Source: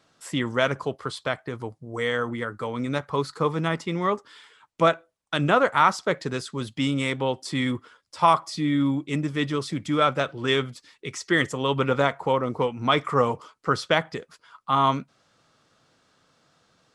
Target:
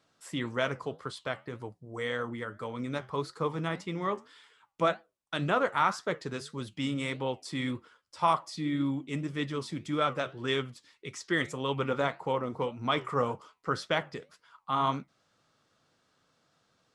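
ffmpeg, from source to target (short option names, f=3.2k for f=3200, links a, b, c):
-af "flanger=delay=6.4:depth=5.7:regen=-78:speed=1.8:shape=triangular,volume=-3dB"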